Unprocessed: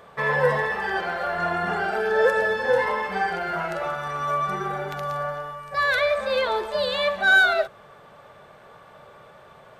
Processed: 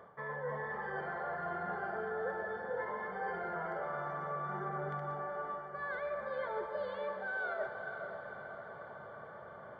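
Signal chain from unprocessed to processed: high-pass 71 Hz; reverse; compression 6:1, threshold -34 dBFS, peak gain reduction 18.5 dB; reverse; Savitzky-Golay filter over 41 samples; echo that smears into a reverb 503 ms, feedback 59%, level -8 dB; on a send at -9 dB: reverberation RT60 4.3 s, pre-delay 68 ms; on the sum: trim -3.5 dB

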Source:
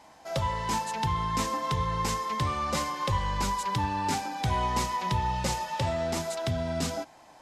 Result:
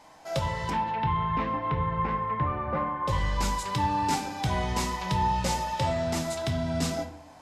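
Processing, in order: 0.69–3.07 s: low-pass 3.2 kHz -> 1.7 kHz 24 dB/octave; simulated room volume 120 m³, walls mixed, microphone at 0.46 m

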